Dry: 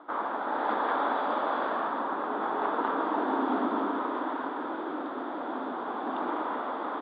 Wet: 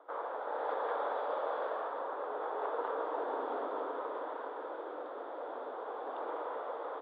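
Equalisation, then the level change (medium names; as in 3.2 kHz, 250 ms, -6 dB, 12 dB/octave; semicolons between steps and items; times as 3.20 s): ladder high-pass 440 Hz, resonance 65%; 0.0 dB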